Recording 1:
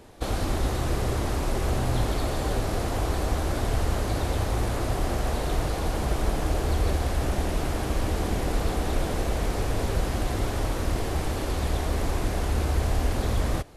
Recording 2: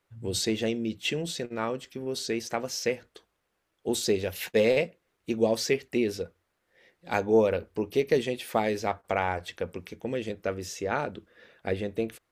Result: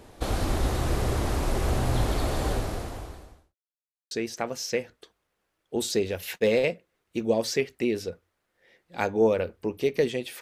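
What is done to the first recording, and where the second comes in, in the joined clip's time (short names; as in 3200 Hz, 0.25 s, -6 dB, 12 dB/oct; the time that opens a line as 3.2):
recording 1
2.48–3.56 fade out quadratic
3.56–4.11 mute
4.11 switch to recording 2 from 2.24 s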